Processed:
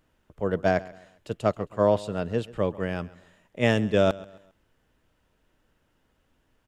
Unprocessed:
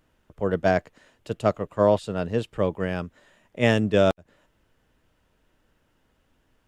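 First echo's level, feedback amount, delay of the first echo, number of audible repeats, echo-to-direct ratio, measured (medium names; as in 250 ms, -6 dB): -20.0 dB, 36%, 134 ms, 2, -19.5 dB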